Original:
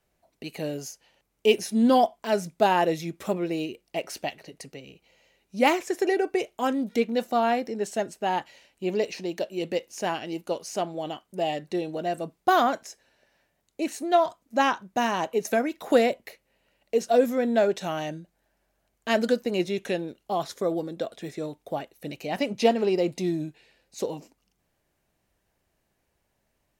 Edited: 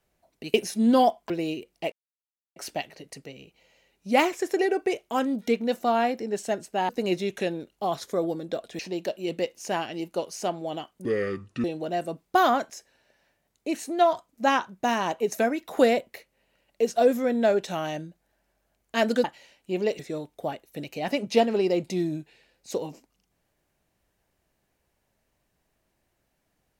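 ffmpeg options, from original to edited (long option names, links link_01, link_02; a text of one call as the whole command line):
ffmpeg -i in.wav -filter_complex "[0:a]asplit=10[link_01][link_02][link_03][link_04][link_05][link_06][link_07][link_08][link_09][link_10];[link_01]atrim=end=0.542[link_11];[link_02]atrim=start=1.498:end=2.262[link_12];[link_03]atrim=start=3.418:end=4.04,asetpts=PTS-STARTPTS,afade=type=out:start_time=0.618:duration=0.004:curve=hsin,apad=pad_dur=0.64[link_13];[link_04]atrim=start=4.04:end=8.372,asetpts=PTS-STARTPTS,afade=type=in:duration=0.004:curve=hsin[link_14];[link_05]atrim=start=19.368:end=21.272[link_15];[link_06]atrim=start=9.118:end=11.384[link_16];[link_07]atrim=start=11.38:end=11.77,asetpts=PTS-STARTPTS,asetrate=29106,aresample=44100,atrim=end_sample=26059,asetpts=PTS-STARTPTS[link_17];[link_08]atrim=start=11.766:end=19.372[link_18];[link_09]atrim=start=8.368:end=9.122[link_19];[link_10]atrim=start=21.268[link_20];[link_11][link_12]acrossfade=duration=0.004:curve1=hsin:curve2=hsin[link_21];[link_13][link_14]concat=n=2:v=0:a=1[link_22];[link_21][link_22]acrossfade=duration=0.004:curve1=hsin:curve2=hsin[link_23];[link_23][link_15]acrossfade=duration=0.004:curve1=hsin:curve2=hsin[link_24];[link_24][link_16]acrossfade=duration=0.004:curve1=hsin:curve2=hsin[link_25];[link_25][link_17]acrossfade=duration=0.004:curve1=hsin:curve2=hsin[link_26];[link_26][link_18]acrossfade=duration=0.004:curve1=hsin:curve2=hsin[link_27];[link_27][link_19]acrossfade=duration=0.004:curve1=hsin:curve2=hsin[link_28];[link_28][link_20]acrossfade=duration=0.004:curve1=hsin:curve2=hsin" out.wav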